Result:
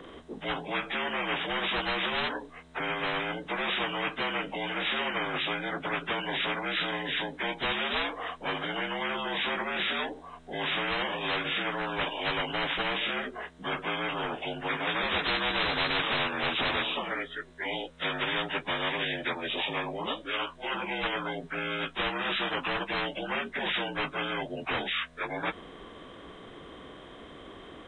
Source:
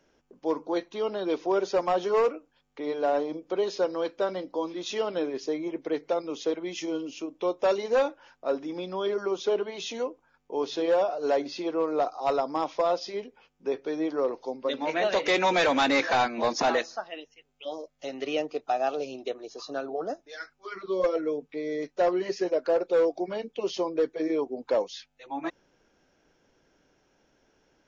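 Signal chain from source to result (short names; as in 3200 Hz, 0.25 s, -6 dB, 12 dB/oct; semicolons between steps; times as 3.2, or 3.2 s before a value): inharmonic rescaling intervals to 82%; spectral compressor 10:1; gain -2.5 dB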